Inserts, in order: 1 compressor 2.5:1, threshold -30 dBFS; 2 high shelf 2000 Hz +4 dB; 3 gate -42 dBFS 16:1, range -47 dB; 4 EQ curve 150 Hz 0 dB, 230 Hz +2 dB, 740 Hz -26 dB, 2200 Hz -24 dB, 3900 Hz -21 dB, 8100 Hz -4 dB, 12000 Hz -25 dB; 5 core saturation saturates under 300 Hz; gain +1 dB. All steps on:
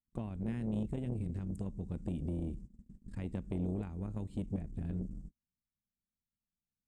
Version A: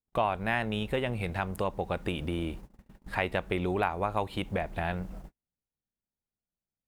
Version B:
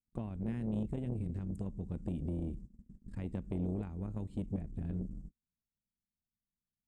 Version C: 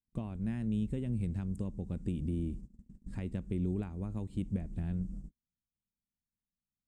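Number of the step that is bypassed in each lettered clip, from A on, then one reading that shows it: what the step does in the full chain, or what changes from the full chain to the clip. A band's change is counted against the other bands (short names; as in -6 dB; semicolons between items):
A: 4, 2 kHz band +18.0 dB; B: 2, 2 kHz band -2.0 dB; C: 5, crest factor change -2.0 dB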